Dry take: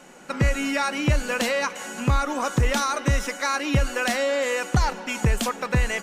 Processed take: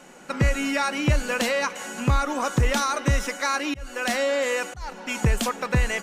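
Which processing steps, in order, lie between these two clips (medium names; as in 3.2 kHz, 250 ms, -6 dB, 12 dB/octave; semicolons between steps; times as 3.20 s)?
3.10–5.11 s: slow attack 396 ms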